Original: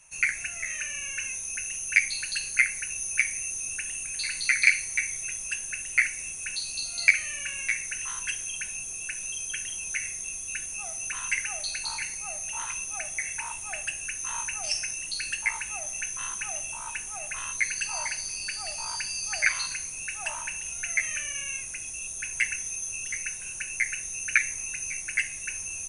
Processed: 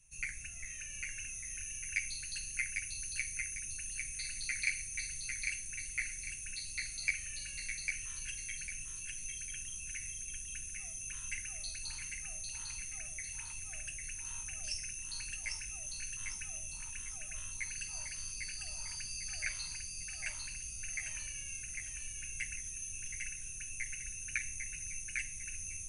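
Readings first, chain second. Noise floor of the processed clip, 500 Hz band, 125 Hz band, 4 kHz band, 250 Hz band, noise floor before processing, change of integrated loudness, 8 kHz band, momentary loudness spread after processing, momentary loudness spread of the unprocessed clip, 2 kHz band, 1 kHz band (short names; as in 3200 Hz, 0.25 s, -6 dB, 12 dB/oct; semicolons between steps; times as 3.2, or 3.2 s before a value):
-45 dBFS, -17.0 dB, +0.5 dB, -10.0 dB, -6.5 dB, -38 dBFS, -11.0 dB, -9.0 dB, 5 LU, 8 LU, -13.5 dB, -21.0 dB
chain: passive tone stack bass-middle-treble 10-0-1; on a send: thinning echo 0.8 s, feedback 34%, level -4 dB; on the sum: gain +10 dB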